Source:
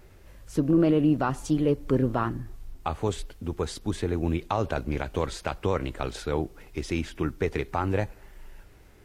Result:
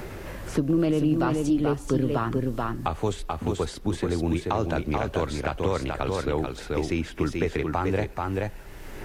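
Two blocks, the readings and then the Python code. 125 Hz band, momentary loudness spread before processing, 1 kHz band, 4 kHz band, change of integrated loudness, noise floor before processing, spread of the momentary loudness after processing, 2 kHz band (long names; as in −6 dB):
+1.5 dB, 12 LU, +2.0 dB, +2.0 dB, +1.0 dB, −52 dBFS, 6 LU, +2.5 dB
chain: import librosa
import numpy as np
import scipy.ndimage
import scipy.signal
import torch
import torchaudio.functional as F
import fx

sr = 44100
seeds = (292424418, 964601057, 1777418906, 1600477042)

y = x + 10.0 ** (-4.5 / 20.0) * np.pad(x, (int(434 * sr / 1000.0), 0))[:len(x)]
y = fx.band_squash(y, sr, depth_pct=70)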